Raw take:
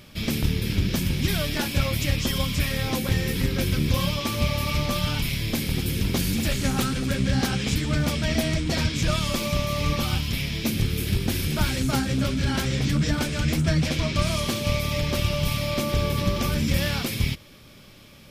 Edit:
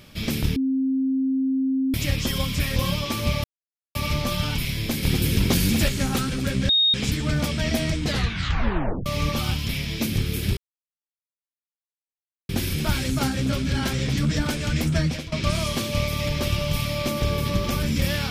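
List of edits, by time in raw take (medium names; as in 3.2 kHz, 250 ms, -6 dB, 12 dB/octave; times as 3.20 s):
0.56–1.94 s: bleep 265 Hz -19.5 dBFS
2.76–3.91 s: delete
4.59 s: insert silence 0.51 s
5.67–6.52 s: gain +4 dB
7.33–7.58 s: bleep 3.72 kHz -15.5 dBFS
8.64 s: tape stop 1.06 s
11.21 s: insert silence 1.92 s
13.73–14.04 s: fade out, to -18 dB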